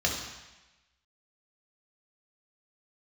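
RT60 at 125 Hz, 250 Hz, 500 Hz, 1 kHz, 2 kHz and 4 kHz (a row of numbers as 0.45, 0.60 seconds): 1.0, 1.0, 1.0, 1.1, 1.2, 1.1 seconds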